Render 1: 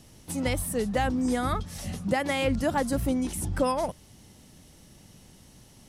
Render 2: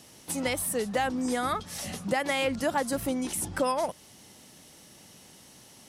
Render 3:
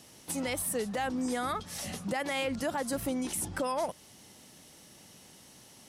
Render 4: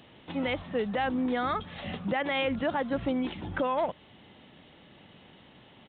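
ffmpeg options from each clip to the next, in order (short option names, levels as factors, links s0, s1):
-af "highpass=f=430:p=1,acompressor=threshold=0.02:ratio=1.5,volume=1.68"
-af "alimiter=limit=0.0891:level=0:latency=1:release=47,volume=0.794"
-af "aresample=8000,aresample=44100,volume=1.5"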